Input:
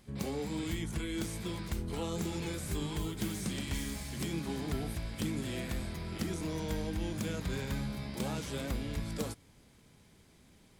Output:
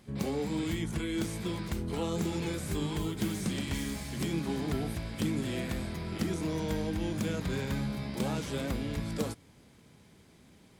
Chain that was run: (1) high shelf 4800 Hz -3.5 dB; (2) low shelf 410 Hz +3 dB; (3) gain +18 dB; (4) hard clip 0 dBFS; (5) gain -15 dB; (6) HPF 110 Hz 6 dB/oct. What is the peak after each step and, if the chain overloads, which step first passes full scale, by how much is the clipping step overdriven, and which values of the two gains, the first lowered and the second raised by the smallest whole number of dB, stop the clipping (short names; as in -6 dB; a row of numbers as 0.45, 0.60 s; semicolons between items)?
-24.5, -21.5, -3.5, -3.5, -18.5, -18.5 dBFS; no overload